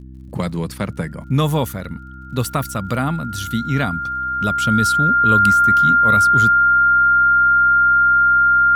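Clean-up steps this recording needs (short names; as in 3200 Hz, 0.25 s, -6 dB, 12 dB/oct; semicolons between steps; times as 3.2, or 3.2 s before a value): de-click; de-hum 64.4 Hz, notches 5; notch 1400 Hz, Q 30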